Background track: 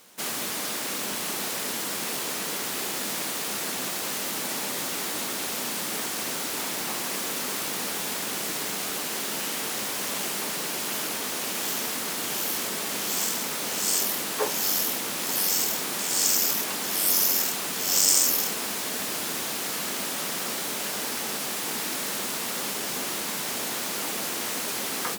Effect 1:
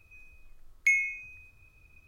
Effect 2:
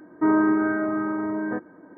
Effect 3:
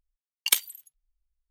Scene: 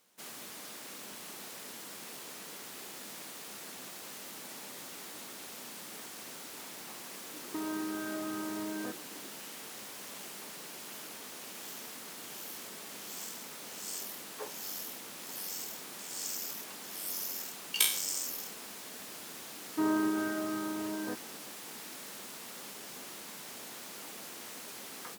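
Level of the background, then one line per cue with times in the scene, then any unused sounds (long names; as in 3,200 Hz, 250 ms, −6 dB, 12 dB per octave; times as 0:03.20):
background track −15.5 dB
0:07.33: mix in 2 −6.5 dB + downward compressor, threshold −28 dBFS
0:17.28: mix in 3 −8.5 dB + peak hold with a decay on every bin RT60 0.50 s
0:19.56: mix in 2 −10 dB
not used: 1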